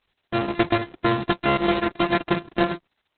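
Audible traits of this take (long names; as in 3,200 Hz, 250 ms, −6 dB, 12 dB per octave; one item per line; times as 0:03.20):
a buzz of ramps at a fixed pitch in blocks of 128 samples
sample-and-hold tremolo
a quantiser's noise floor 12 bits, dither triangular
Opus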